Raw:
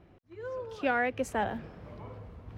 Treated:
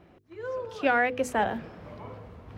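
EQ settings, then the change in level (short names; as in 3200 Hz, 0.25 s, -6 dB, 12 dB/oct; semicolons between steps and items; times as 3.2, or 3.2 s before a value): low shelf 90 Hz -8.5 dB; notches 50/100/150/200/250/300/350/400/450/500 Hz; +5.0 dB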